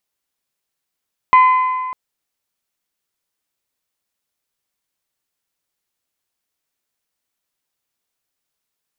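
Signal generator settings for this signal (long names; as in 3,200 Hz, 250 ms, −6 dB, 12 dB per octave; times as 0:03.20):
struck metal bell, length 0.60 s, lowest mode 1,020 Hz, decay 1.90 s, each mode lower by 11 dB, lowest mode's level −5 dB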